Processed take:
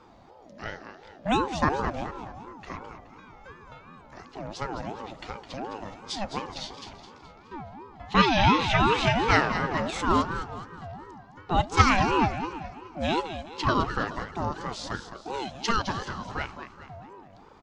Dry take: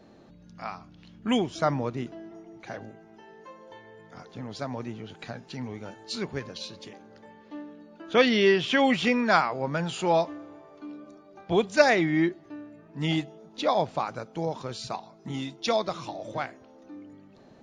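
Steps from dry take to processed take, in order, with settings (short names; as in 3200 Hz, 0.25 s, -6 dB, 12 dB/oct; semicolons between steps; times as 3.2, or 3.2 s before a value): feedback echo 0.211 s, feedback 44%, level -10 dB; ring modulator with a swept carrier 540 Hz, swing 30%, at 2.8 Hz; gain +3 dB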